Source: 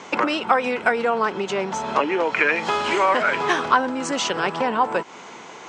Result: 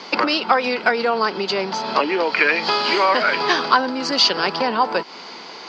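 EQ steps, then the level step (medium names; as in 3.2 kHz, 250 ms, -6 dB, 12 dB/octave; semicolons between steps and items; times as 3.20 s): high-pass 160 Hz 24 dB/octave; resonant low-pass 4.7 kHz, resonance Q 15; distance through air 65 m; +1.5 dB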